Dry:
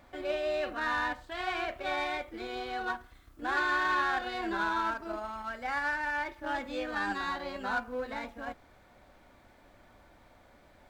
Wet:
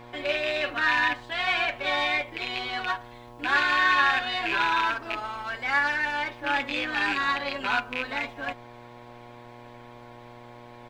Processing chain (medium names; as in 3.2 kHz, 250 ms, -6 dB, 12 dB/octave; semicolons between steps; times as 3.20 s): rattle on loud lows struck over -43 dBFS, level -27 dBFS; peaking EQ 2.8 kHz +11 dB 2.1 oct; comb 7.1 ms, depth 65%; mains buzz 120 Hz, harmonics 9, -47 dBFS -1 dB/octave